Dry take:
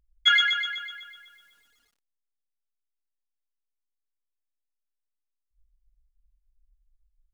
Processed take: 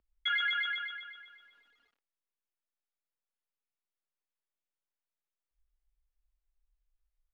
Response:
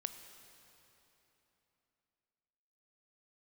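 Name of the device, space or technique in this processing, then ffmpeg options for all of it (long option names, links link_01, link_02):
DJ mixer with the lows and highs turned down: -filter_complex "[0:a]acrossover=split=240 3500:gain=0.251 1 0.0708[link_01][link_02][link_03];[link_01][link_02][link_03]amix=inputs=3:normalize=0,alimiter=limit=-22.5dB:level=0:latency=1:release=380"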